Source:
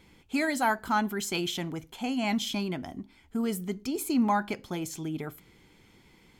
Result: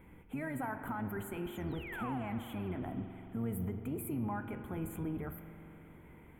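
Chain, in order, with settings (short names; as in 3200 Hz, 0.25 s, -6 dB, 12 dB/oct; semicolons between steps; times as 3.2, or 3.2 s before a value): octaver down 1 oct, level -3 dB; compressor, threshold -32 dBFS, peak gain reduction 13 dB; limiter -31 dBFS, peak gain reduction 8 dB; resonator 480 Hz, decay 0.58 s, mix 60%; painted sound fall, 1.55–2.18, 710–7400 Hz -51 dBFS; Butterworth band-stop 5100 Hz, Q 0.55; on a send: reverb RT60 4.0 s, pre-delay 43 ms, DRR 7.5 dB; on the sum: gain +8.5 dB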